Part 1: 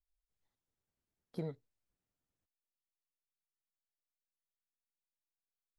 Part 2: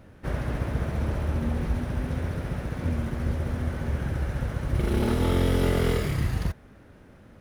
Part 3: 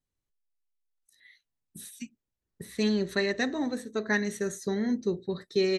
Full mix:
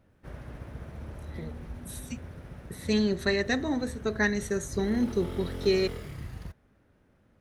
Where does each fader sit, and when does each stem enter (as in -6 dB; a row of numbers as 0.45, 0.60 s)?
-2.5, -13.5, +1.0 dB; 0.00, 0.00, 0.10 s